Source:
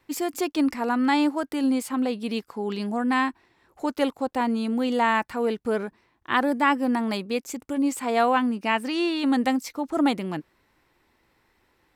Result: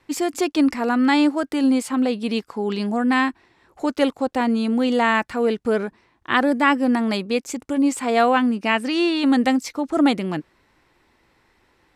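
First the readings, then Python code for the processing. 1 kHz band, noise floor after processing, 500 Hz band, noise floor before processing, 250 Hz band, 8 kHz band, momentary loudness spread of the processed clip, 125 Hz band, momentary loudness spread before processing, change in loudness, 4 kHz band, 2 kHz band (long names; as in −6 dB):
+2.5 dB, −63 dBFS, +4.5 dB, −67 dBFS, +5.0 dB, +4.0 dB, 8 LU, can't be measured, 8 LU, +4.5 dB, +5.0 dB, +5.0 dB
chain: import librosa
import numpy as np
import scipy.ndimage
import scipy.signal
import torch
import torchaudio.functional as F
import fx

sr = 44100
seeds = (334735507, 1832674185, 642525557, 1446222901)

y = scipy.signal.sosfilt(scipy.signal.butter(2, 10000.0, 'lowpass', fs=sr, output='sos'), x)
y = fx.dynamic_eq(y, sr, hz=940.0, q=3.3, threshold_db=-39.0, ratio=4.0, max_db=-5)
y = F.gain(torch.from_numpy(y), 5.0).numpy()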